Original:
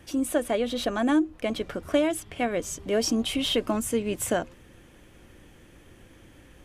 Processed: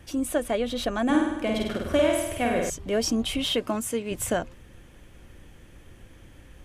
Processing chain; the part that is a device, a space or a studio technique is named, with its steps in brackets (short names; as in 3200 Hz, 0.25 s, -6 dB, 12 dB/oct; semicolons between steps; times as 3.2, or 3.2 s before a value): 1.05–2.7 flutter echo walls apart 8.6 m, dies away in 1 s; 3.44–4.1 HPF 100 Hz -> 340 Hz 6 dB/oct; low shelf boost with a cut just above (low shelf 89 Hz +8 dB; bell 320 Hz -2.5 dB 0.77 oct)